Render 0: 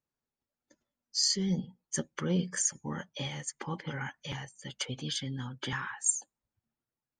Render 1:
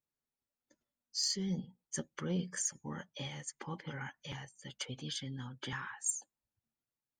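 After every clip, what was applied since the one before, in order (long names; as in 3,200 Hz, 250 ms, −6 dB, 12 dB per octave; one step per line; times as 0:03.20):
soft clipping −15.5 dBFS, distortion −26 dB
level −5.5 dB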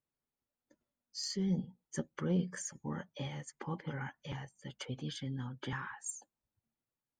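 high-shelf EQ 2,200 Hz −11.5 dB
level +3.5 dB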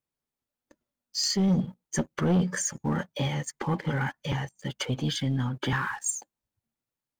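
leveller curve on the samples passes 2
level +5.5 dB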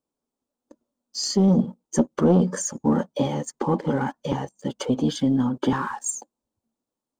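graphic EQ with 10 bands 125 Hz −5 dB, 250 Hz +11 dB, 500 Hz +7 dB, 1,000 Hz +6 dB, 2,000 Hz −9 dB, 8,000 Hz +6 dB, 16,000 Hz −10 dB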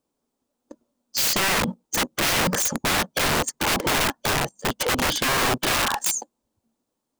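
wrap-around overflow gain 23.5 dB
level +7 dB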